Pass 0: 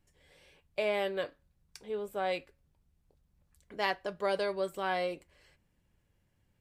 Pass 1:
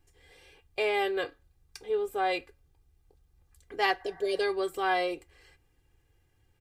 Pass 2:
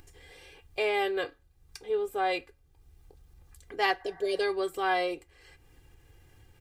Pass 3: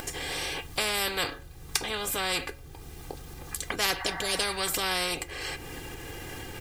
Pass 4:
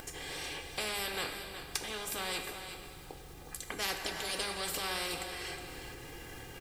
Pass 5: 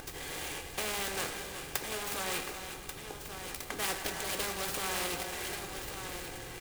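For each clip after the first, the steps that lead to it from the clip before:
healed spectral selection 0:04.02–0:04.38, 730–2,100 Hz before; comb filter 2.5 ms, depth 81%; level +2.5 dB
upward compression, threshold −45 dBFS
every bin compressed towards the loudest bin 4 to 1; level +3.5 dB
single-tap delay 365 ms −10.5 dB; dense smooth reverb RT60 3.2 s, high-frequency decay 0.85×, DRR 5.5 dB; level −8.5 dB
on a send: single-tap delay 1,137 ms −8 dB; on the sum: short delay modulated by noise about 5,300 Hz, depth 0.052 ms; level +1.5 dB

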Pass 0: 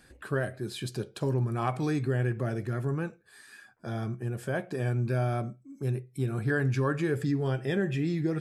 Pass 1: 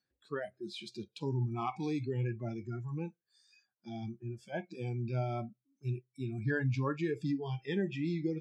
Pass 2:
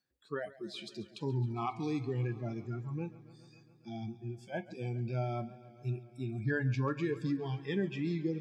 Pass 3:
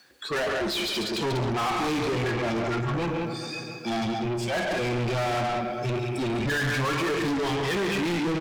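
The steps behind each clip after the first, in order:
noise reduction from a noise print of the clip's start 25 dB; Chebyshev band-pass filter 110–4,600 Hz, order 2; level −3.5 dB
feedback echo with a swinging delay time 138 ms, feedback 76%, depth 65 cents, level −18.5 dB
multi-tap delay 58/109/140/191 ms −14/−18.5/−11/−9 dB; mid-hump overdrive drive 38 dB, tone 4,700 Hz, clips at −20 dBFS

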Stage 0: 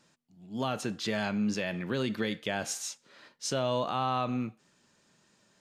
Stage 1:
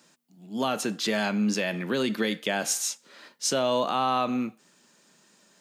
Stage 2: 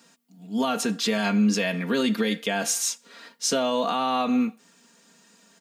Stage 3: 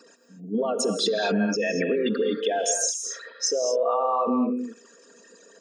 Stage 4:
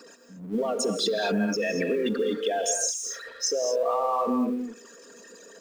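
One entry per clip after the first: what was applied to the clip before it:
high-pass filter 170 Hz 24 dB per octave; high-shelf EQ 9,500 Hz +11 dB; level +5 dB
comb filter 4.3 ms, depth 73%; brickwall limiter −16 dBFS, peak gain reduction 4 dB; level +1.5 dB
spectral envelope exaggerated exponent 3; downward compressor, threshold −26 dBFS, peak gain reduction 8.5 dB; reverb whose tail is shaped and stops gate 260 ms rising, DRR 5.5 dB; level +4 dB
mu-law and A-law mismatch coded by mu; level −2.5 dB

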